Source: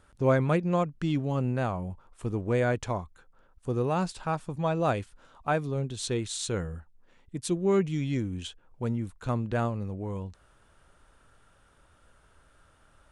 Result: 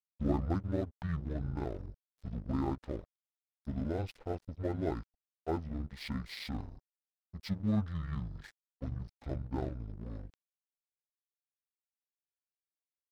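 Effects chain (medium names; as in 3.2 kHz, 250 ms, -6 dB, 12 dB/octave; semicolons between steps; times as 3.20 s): rotating-head pitch shifter -10.5 st; crossover distortion -45 dBFS; trim -5.5 dB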